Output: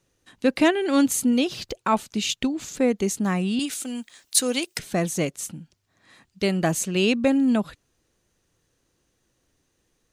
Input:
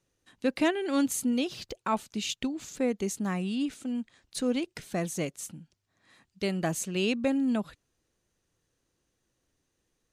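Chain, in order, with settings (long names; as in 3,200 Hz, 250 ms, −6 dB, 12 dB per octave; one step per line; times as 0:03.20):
0:03.59–0:04.79: RIAA equalisation recording
level +7 dB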